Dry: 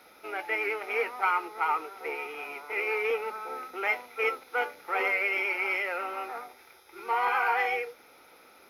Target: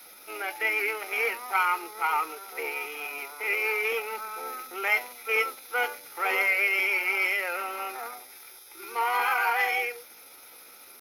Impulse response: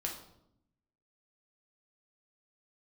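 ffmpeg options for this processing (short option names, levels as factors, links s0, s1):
-af "adynamicequalizer=threshold=0.00631:dfrequency=460:dqfactor=7.3:tfrequency=460:tqfactor=7.3:attack=5:release=100:ratio=0.375:range=2.5:mode=cutabove:tftype=bell,atempo=0.79,crystalizer=i=4:c=0,volume=0.891"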